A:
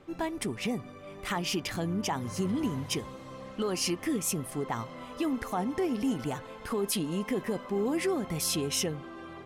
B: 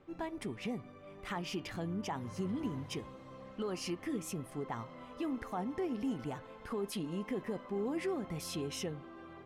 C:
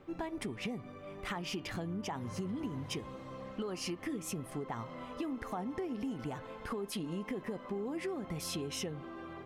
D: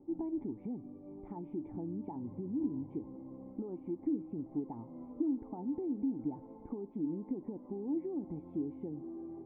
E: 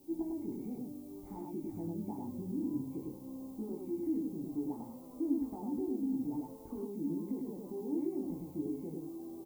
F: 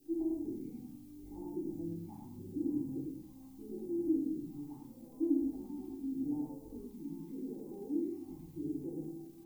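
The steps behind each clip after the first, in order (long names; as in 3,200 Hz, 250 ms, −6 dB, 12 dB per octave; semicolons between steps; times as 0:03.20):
high-shelf EQ 4,700 Hz −10.5 dB; hum removal 315.7 Hz, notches 14; level −6.5 dB
downward compressor, threshold −40 dBFS, peak gain reduction 8 dB; level +5 dB
formant resonators in series u; level +7.5 dB
background noise violet −63 dBFS; chorus effect 0.56 Hz, delay 18 ms, depth 5.9 ms; on a send: loudspeakers that aren't time-aligned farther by 13 metres −11 dB, 35 metres −2 dB; on the sum: level +1 dB
all-pass phaser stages 2, 0.81 Hz, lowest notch 450–1,900 Hz; surface crackle 110 per second −59 dBFS; convolution reverb RT60 0.55 s, pre-delay 3 ms, DRR 0 dB; level −5.5 dB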